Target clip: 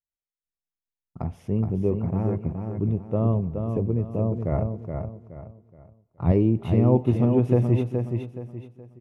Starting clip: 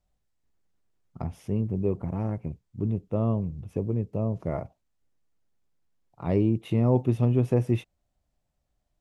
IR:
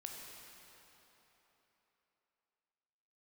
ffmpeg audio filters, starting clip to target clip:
-filter_complex "[0:a]highshelf=f=2.8k:g=-8.5,agate=range=-33dB:threshold=-54dB:ratio=3:detection=peak,asettb=1/sr,asplit=3[a][b][c];[a]atrim=end=4.514[d];[b]atrim=start=4.51:end=6.32,asetpts=PTS-STARTPTS,afade=t=in:d=0.004:c=qsin,afade=t=out:st=1.806:d=0.004:c=qsin,equalizer=f=85:t=o:w=1.9:g=11[e];[c]atrim=start=6.316[f];[d][e]acrossfade=d=0.004:c1=hsin:c2=qsin[g];[g][f]acrossfade=d=0.004:c1=qsin:c2=hsin,aecho=1:1:422|844|1266|1688:0.501|0.165|0.0546|0.018,asplit=2[h][i];[1:a]atrim=start_sample=2205,afade=t=out:st=0.4:d=0.01,atrim=end_sample=18081[j];[i][j]afir=irnorm=-1:irlink=0,volume=-15.5dB[k];[h][k]amix=inputs=2:normalize=0,volume=2dB"

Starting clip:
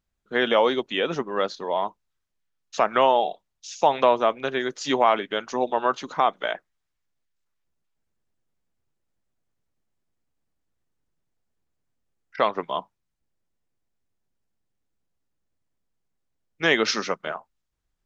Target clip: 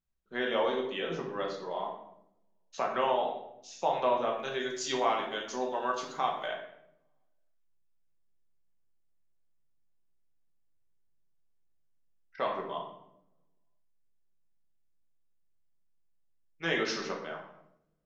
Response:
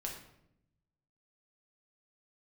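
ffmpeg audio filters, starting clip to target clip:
-filter_complex "[0:a]asettb=1/sr,asplit=3[a][b][c];[a]atrim=end=4.354[d];[b]atrim=start=4.35:end=6.46,asetpts=PTS-STARTPTS,afade=t=in:d=0.004:c=qsin,afade=t=out:st=2.106:d=0.004:c=qsin,aemphasis=mode=production:type=75fm[e];[c]atrim=start=6.456[f];[d][e]acrossfade=d=0.004:c1=hsin:c2=qsin[g];[g][f]acrossfade=d=0.004:c1=qsin:c2=hsin[h];[1:a]atrim=start_sample=2205[i];[h][i]afir=irnorm=-1:irlink=0,volume=-9dB"

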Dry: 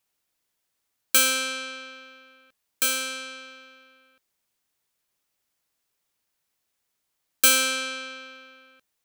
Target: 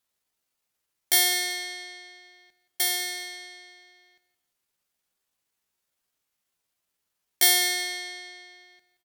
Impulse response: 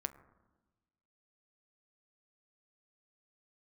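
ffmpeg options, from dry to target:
-filter_complex "[0:a]aecho=1:1:179|358:0.168|0.0386,asetrate=60591,aresample=44100,atempo=0.727827,asplit=2[a][b];[1:a]atrim=start_sample=2205,asetrate=35721,aresample=44100[c];[b][c]afir=irnorm=-1:irlink=0,volume=-4.5dB[d];[a][d]amix=inputs=2:normalize=0,volume=-4.5dB"

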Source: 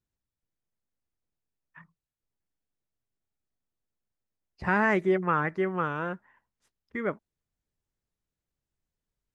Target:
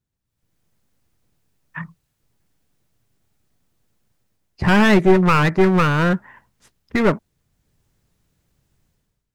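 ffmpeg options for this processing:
-af "dynaudnorm=f=120:g=7:m=16.5dB,aeval=exprs='clip(val(0),-1,0.0794)':c=same,equalizer=f=130:w=0.81:g=6.5,volume=2.5dB"

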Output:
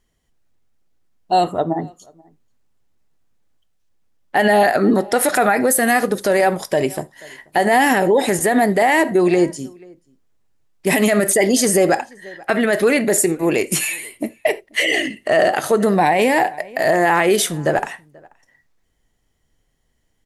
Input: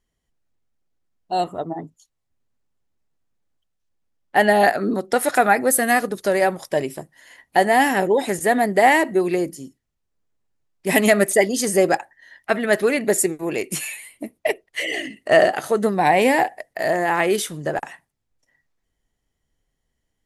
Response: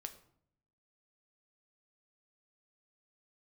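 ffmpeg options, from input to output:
-filter_complex "[0:a]asettb=1/sr,asplit=3[a][b][c];[a]atrim=end=9.184[d];[b]atrim=start=9.18:end=9.59,asetpts=PTS-STARTPTS,afade=t=in:d=0.004:c=qsin,afade=t=out:st=0.406:d=0.004:c=qsin,lowpass=f=9k:w=0.5412,lowpass=f=9k:w=1.3066[e];[c]atrim=start=9.586[f];[d][e]acrossfade=d=0.004:c1=hsin:c2=qsin[g];[g][f]acrossfade=d=0.004:c1=qsin:c2=hsin,asplit=2[h][i];[i]adelay=484,volume=-28dB,highshelf=f=4k:g=-10.9[j];[h][j]amix=inputs=2:normalize=0,asplit=2[k][l];[1:a]atrim=start_sample=2205,atrim=end_sample=3528,asetrate=38808,aresample=44100[m];[l][m]afir=irnorm=-1:irlink=0,volume=-1.5dB[n];[k][n]amix=inputs=2:normalize=0,alimiter=level_in=9.5dB:limit=-1dB:release=50:level=0:latency=1,volume=-5.5dB"

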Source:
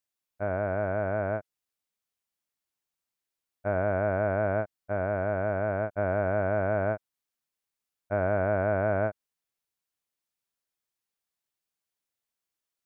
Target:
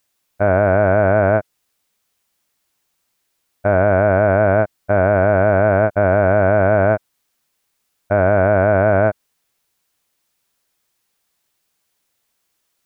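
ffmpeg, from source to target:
-af "alimiter=level_in=20dB:limit=-1dB:release=50:level=0:latency=1,volume=-2.5dB"

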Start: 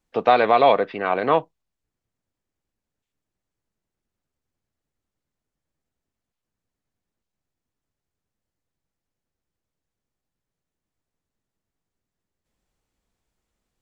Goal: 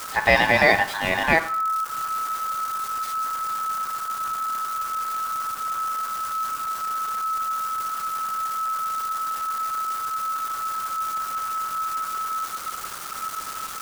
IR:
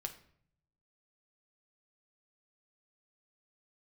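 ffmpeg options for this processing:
-filter_complex "[0:a]aeval=exprs='val(0)+0.5*0.0299*sgn(val(0))':c=same,asplit=2[a][b];[1:a]atrim=start_sample=2205,lowshelf=f=250:g=7,highshelf=f=3.4k:g=11.5[c];[b][c]afir=irnorm=-1:irlink=0,volume=6.5dB[d];[a][d]amix=inputs=2:normalize=0,aeval=exprs='val(0)*sin(2*PI*1300*n/s)':c=same,volume=-8dB"

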